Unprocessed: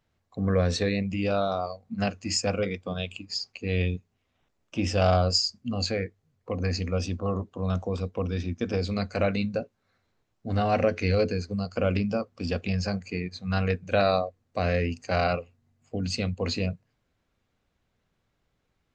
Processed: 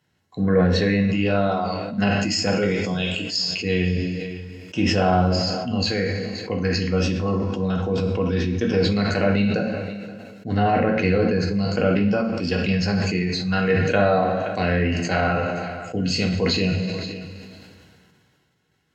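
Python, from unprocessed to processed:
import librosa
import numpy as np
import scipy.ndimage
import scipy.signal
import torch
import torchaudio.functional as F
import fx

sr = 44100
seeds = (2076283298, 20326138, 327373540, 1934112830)

p1 = scipy.signal.sosfilt(scipy.signal.butter(2, 82.0, 'highpass', fs=sr, output='sos'), x)
p2 = fx.env_lowpass_down(p1, sr, base_hz=1600.0, full_db=-20.0)
p3 = fx.peak_eq(p2, sr, hz=600.0, db=-7.5, octaves=0.97)
p4 = fx.notch_comb(p3, sr, f0_hz=1200.0)
p5 = fx.cheby_harmonics(p4, sr, harmonics=(7,), levels_db=(-45,), full_scale_db=-13.5)
p6 = p5 + fx.echo_single(p5, sr, ms=526, db=-24.0, dry=0)
p7 = fx.rev_double_slope(p6, sr, seeds[0], early_s=0.54, late_s=2.0, knee_db=-16, drr_db=2.0)
p8 = fx.sustainer(p7, sr, db_per_s=26.0)
y = p8 * librosa.db_to_amplitude(8.0)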